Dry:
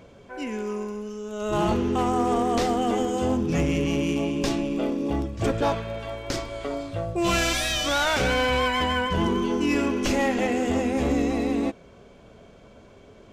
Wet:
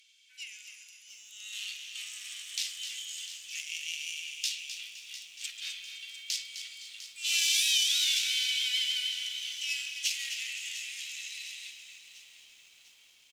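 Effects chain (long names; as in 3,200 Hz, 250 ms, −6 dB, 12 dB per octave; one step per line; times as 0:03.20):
tube saturation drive 19 dB, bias 0.5
Butterworth high-pass 2,600 Hz 36 dB per octave
on a send: echo with shifted repeats 257 ms, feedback 36%, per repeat −39 Hz, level −10 dB
on the sum: feedback echo at a low word length 701 ms, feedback 55%, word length 10 bits, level −13 dB
level +4.5 dB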